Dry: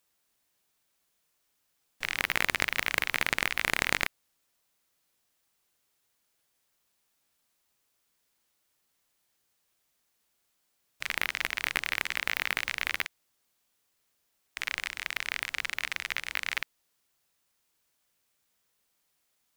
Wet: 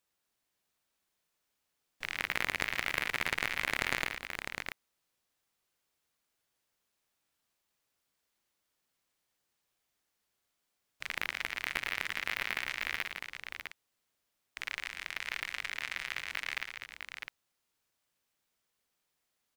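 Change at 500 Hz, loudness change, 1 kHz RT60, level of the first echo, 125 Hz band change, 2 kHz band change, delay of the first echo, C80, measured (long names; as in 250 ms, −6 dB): −4.0 dB, −5.5 dB, no reverb audible, −10.0 dB, −3.5 dB, −4.0 dB, 113 ms, no reverb audible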